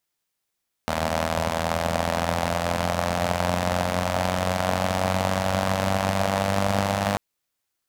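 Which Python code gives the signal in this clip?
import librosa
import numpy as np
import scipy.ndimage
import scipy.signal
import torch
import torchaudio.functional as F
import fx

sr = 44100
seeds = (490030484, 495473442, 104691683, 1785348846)

y = fx.engine_four_rev(sr, seeds[0], length_s=6.29, rpm=2400, resonances_hz=(100.0, 190.0, 610.0), end_rpm=3000)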